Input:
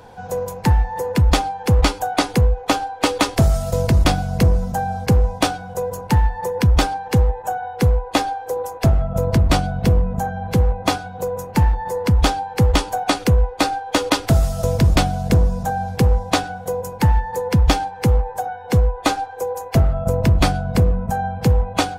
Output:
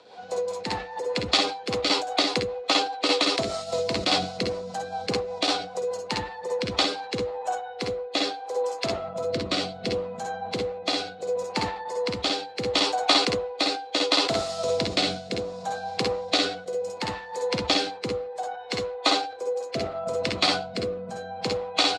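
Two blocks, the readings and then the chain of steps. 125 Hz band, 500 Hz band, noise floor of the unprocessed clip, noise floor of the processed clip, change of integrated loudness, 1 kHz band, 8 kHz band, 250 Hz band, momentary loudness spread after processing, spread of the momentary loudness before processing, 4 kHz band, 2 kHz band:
-23.0 dB, -3.5 dB, -35 dBFS, -40 dBFS, -7.0 dB, -7.0 dB, -6.0 dB, -10.0 dB, 9 LU, 8 LU, +3.0 dB, -3.5 dB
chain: cabinet simulation 480–7100 Hz, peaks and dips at 510 Hz -3 dB, 890 Hz -7 dB, 1.6 kHz -8 dB, 4.1 kHz +8 dB, 6.2 kHz -5 dB; on a send: early reflections 53 ms -5 dB, 63 ms -4.5 dB; on the sum: rotary cabinet horn 5 Hz, later 0.7 Hz, at 6.61 s; decay stretcher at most 94 dB/s

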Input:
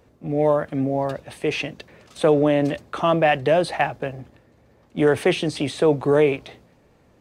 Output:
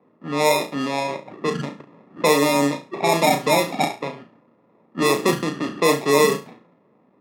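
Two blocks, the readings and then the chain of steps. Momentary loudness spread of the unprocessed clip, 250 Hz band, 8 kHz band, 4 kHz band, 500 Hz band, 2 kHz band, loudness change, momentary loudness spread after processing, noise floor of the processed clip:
11 LU, 0.0 dB, +12.5 dB, +5.5 dB, -1.0 dB, +2.5 dB, +0.5 dB, 12 LU, -60 dBFS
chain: knee-point frequency compression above 1.1 kHz 4:1; sample-and-hold 29×; level-controlled noise filter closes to 1.3 kHz, open at -13.5 dBFS; Chebyshev high-pass 180 Hz, order 3; flutter echo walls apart 6 m, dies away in 0.28 s

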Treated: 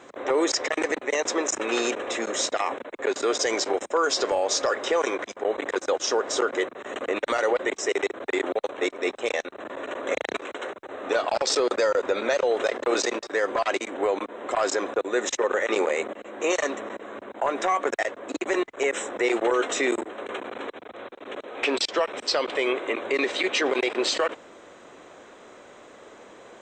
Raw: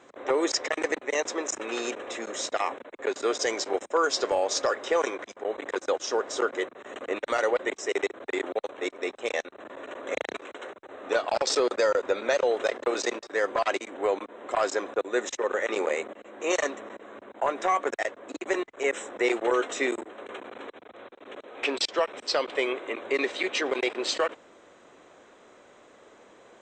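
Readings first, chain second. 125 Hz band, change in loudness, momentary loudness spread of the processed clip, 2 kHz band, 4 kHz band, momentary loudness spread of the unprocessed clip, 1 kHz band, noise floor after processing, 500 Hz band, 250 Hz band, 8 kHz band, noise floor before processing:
no reading, +2.5 dB, 11 LU, +2.5 dB, +3.5 dB, 15 LU, +2.0 dB, -49 dBFS, +2.5 dB, +4.0 dB, +4.5 dB, -55 dBFS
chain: peak limiter -21 dBFS, peak gain reduction 6.5 dB; trim +6.5 dB

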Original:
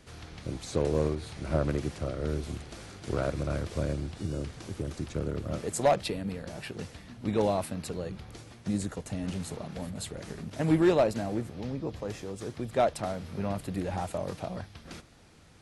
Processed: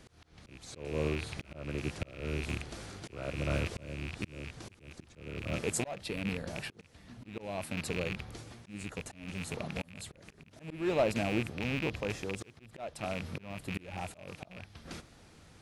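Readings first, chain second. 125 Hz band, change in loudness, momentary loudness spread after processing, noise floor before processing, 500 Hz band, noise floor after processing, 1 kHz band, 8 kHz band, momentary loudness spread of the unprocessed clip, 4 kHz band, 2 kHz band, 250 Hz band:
-5.5 dB, -5.5 dB, 16 LU, -52 dBFS, -7.5 dB, -60 dBFS, -8.5 dB, -2.0 dB, 13 LU, -1.0 dB, +3.0 dB, -6.5 dB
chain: rattle on loud lows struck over -37 dBFS, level -25 dBFS; slow attack 485 ms

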